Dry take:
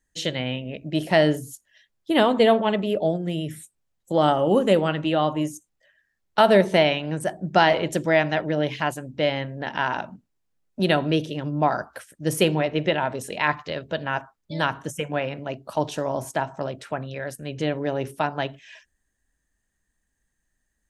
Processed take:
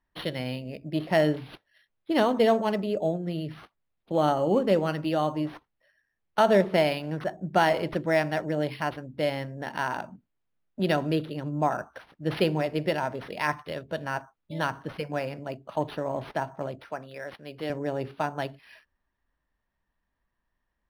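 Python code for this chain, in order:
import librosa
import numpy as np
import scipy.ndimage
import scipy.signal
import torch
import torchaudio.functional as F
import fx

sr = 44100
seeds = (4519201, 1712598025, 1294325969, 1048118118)

y = fx.highpass(x, sr, hz=420.0, slope=6, at=(16.8, 17.7))
y = np.interp(np.arange(len(y)), np.arange(len(y))[::6], y[::6])
y = y * librosa.db_to_amplitude(-4.0)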